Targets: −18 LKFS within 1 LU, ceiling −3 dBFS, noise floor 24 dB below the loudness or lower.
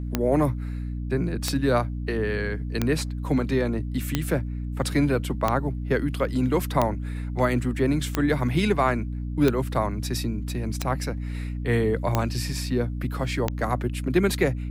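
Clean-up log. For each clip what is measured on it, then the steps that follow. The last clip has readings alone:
number of clicks 11; mains hum 60 Hz; hum harmonics up to 300 Hz; level of the hum −28 dBFS; integrated loudness −25.5 LKFS; sample peak −7.5 dBFS; target loudness −18.0 LKFS
→ click removal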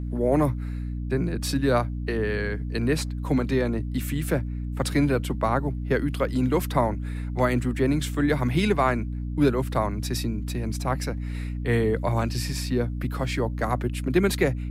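number of clicks 0; mains hum 60 Hz; hum harmonics up to 300 Hz; level of the hum −28 dBFS
→ hum removal 60 Hz, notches 5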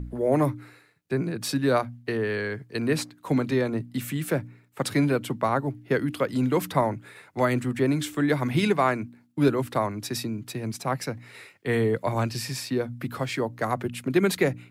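mains hum none found; integrated loudness −26.5 LKFS; sample peak −8.0 dBFS; target loudness −18.0 LKFS
→ level +8.5 dB
brickwall limiter −3 dBFS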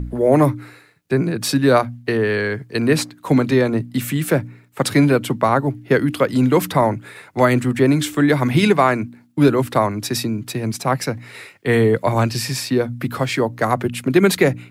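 integrated loudness −18.5 LKFS; sample peak −3.0 dBFS; background noise floor −50 dBFS

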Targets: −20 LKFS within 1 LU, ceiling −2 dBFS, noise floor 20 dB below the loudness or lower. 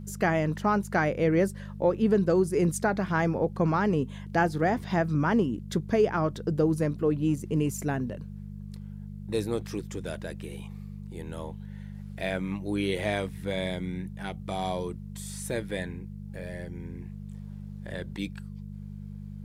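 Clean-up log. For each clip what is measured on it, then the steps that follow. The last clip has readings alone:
mains hum 50 Hz; hum harmonics up to 200 Hz; level of the hum −37 dBFS; integrated loudness −28.5 LKFS; sample peak −12.0 dBFS; target loudness −20.0 LKFS
→ hum removal 50 Hz, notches 4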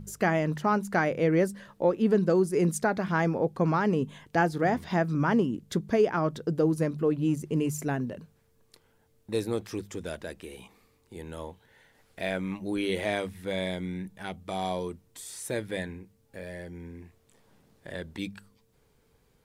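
mains hum none found; integrated loudness −28.5 LKFS; sample peak −12.5 dBFS; target loudness −20.0 LKFS
→ level +8.5 dB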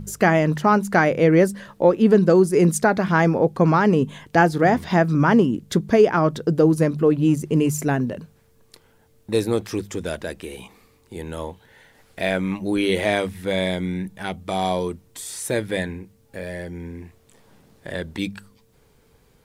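integrated loudness −20.0 LKFS; sample peak −4.0 dBFS; background noise floor −58 dBFS

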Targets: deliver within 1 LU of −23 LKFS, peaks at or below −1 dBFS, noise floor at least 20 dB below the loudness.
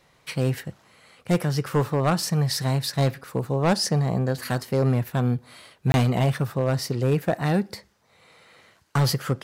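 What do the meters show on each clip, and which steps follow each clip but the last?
share of clipped samples 0.9%; peaks flattened at −14.0 dBFS; number of dropouts 1; longest dropout 21 ms; integrated loudness −24.5 LKFS; sample peak −14.0 dBFS; target loudness −23.0 LKFS
→ clipped peaks rebuilt −14 dBFS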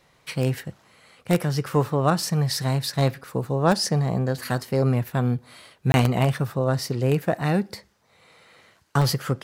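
share of clipped samples 0.0%; number of dropouts 1; longest dropout 21 ms
→ repair the gap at 0:05.92, 21 ms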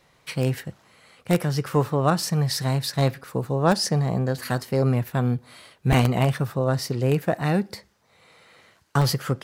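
number of dropouts 0; integrated loudness −24.0 LKFS; sample peak −5.0 dBFS; target loudness −23.0 LKFS
→ level +1 dB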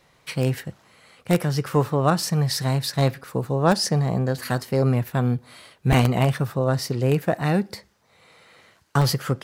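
integrated loudness −23.0 LKFS; sample peak −4.0 dBFS; background noise floor −60 dBFS

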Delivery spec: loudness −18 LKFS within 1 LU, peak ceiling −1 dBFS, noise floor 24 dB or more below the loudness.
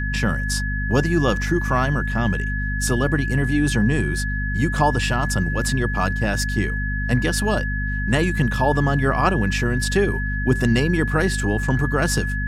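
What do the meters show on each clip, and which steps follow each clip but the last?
mains hum 50 Hz; hum harmonics up to 250 Hz; level of the hum −22 dBFS; interfering tone 1,700 Hz; level of the tone −27 dBFS; integrated loudness −21.0 LKFS; sample peak −4.0 dBFS; target loudness −18.0 LKFS
→ mains-hum notches 50/100/150/200/250 Hz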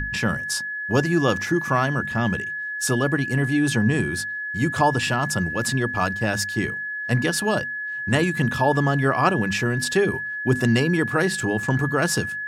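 mains hum none found; interfering tone 1,700 Hz; level of the tone −27 dBFS
→ notch filter 1,700 Hz, Q 30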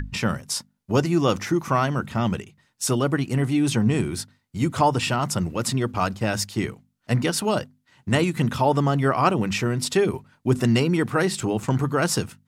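interfering tone none found; integrated loudness −23.5 LKFS; sample peak −5.5 dBFS; target loudness −18.0 LKFS
→ level +5.5 dB
brickwall limiter −1 dBFS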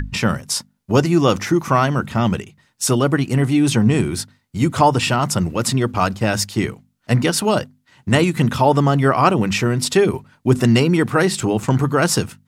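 integrated loudness −18.0 LKFS; sample peak −1.0 dBFS; background noise floor −63 dBFS

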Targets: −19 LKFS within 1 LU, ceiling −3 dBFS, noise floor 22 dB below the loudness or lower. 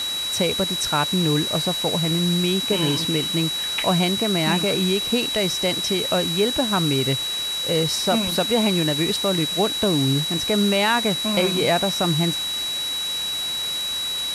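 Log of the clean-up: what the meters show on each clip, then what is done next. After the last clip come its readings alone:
interfering tone 3,900 Hz; level of the tone −24 dBFS; background noise floor −26 dBFS; target noise floor −43 dBFS; integrated loudness −20.5 LKFS; sample peak −7.5 dBFS; target loudness −19.0 LKFS
→ notch filter 3,900 Hz, Q 30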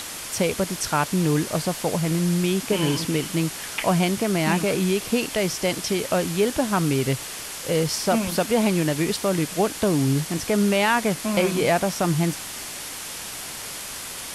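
interfering tone none found; background noise floor −35 dBFS; target noise floor −46 dBFS
→ broadband denoise 11 dB, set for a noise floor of −35 dBFS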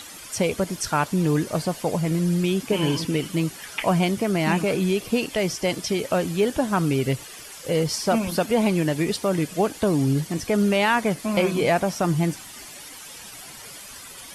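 background noise floor −41 dBFS; target noise floor −46 dBFS
→ broadband denoise 6 dB, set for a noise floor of −41 dBFS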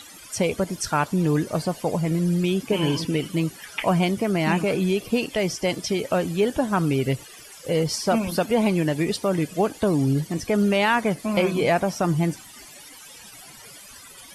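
background noise floor −45 dBFS; target noise floor −46 dBFS
→ broadband denoise 6 dB, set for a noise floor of −45 dBFS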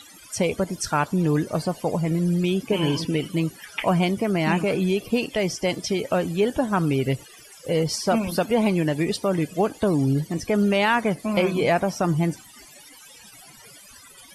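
background noise floor −48 dBFS; integrated loudness −23.5 LKFS; sample peak −9.0 dBFS; target loudness −19.0 LKFS
→ level +4.5 dB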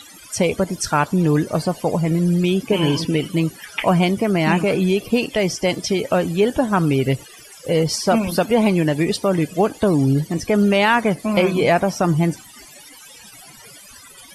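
integrated loudness −19.0 LKFS; sample peak −4.5 dBFS; background noise floor −43 dBFS

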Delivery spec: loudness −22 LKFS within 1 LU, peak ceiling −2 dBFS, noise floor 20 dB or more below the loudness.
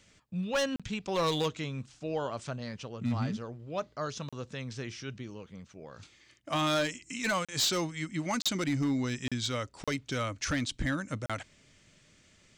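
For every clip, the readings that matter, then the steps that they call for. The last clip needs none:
share of clipped samples 0.9%; peaks flattened at −23.5 dBFS; number of dropouts 7; longest dropout 36 ms; integrated loudness −33.0 LKFS; sample peak −23.5 dBFS; target loudness −22.0 LKFS
→ clipped peaks rebuilt −23.5 dBFS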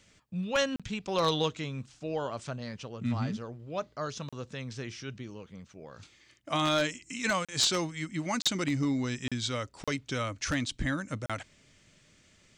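share of clipped samples 0.0%; number of dropouts 7; longest dropout 36 ms
→ repair the gap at 0:00.76/0:04.29/0:07.45/0:08.42/0:09.28/0:09.84/0:11.26, 36 ms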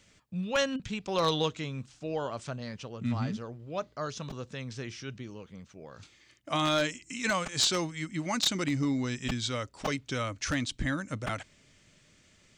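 number of dropouts 0; integrated loudness −32.0 LKFS; sample peak −13.5 dBFS; target loudness −22.0 LKFS
→ level +10 dB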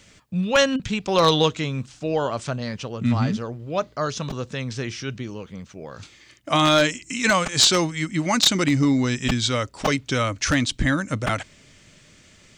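integrated loudness −22.0 LKFS; sample peak −3.5 dBFS; background noise floor −53 dBFS

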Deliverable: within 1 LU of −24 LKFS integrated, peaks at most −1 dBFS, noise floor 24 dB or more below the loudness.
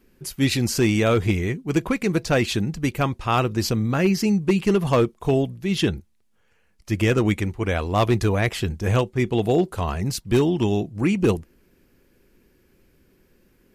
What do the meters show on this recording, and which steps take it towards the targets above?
share of clipped samples 0.5%; peaks flattened at −11.5 dBFS; integrated loudness −22.0 LKFS; sample peak −11.5 dBFS; target loudness −24.0 LKFS
→ clipped peaks rebuilt −11.5 dBFS
level −2 dB

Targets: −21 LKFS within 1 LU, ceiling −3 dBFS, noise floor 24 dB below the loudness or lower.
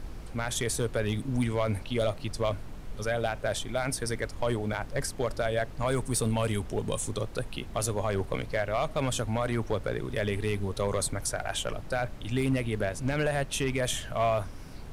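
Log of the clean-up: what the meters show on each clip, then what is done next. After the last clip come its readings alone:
share of clipped samples 0.7%; peaks flattened at −19.5 dBFS; background noise floor −42 dBFS; target noise floor −55 dBFS; integrated loudness −30.5 LKFS; sample peak −19.5 dBFS; target loudness −21.0 LKFS
→ clipped peaks rebuilt −19.5 dBFS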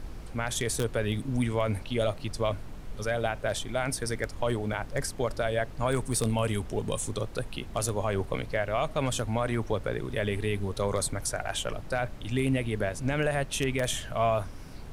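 share of clipped samples 0.0%; background noise floor −42 dBFS; target noise floor −55 dBFS
→ noise reduction from a noise print 13 dB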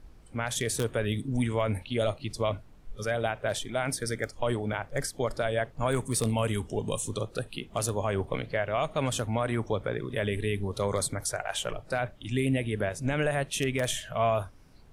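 background noise floor −52 dBFS; target noise floor −55 dBFS
→ noise reduction from a noise print 6 dB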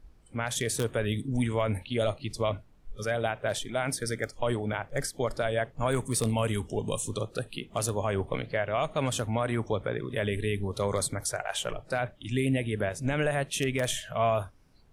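background noise floor −57 dBFS; integrated loudness −30.5 LKFS; sample peak −10.5 dBFS; target loudness −21.0 LKFS
→ level +9.5 dB
brickwall limiter −3 dBFS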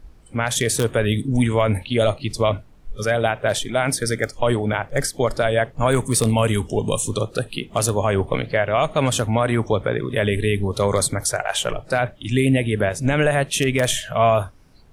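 integrated loudness −21.0 LKFS; sample peak −3.0 dBFS; background noise floor −47 dBFS

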